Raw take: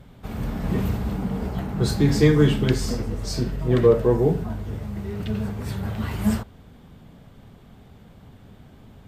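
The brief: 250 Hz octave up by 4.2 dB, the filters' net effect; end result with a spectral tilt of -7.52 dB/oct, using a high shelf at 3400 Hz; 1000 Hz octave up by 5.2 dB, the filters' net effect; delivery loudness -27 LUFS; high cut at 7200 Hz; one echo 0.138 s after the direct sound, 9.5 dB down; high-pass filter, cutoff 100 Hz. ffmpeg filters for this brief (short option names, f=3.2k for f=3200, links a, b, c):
-af "highpass=100,lowpass=7.2k,equalizer=f=250:t=o:g=5.5,equalizer=f=1k:t=o:g=7,highshelf=f=3.4k:g=-8.5,aecho=1:1:138:0.335,volume=-6.5dB"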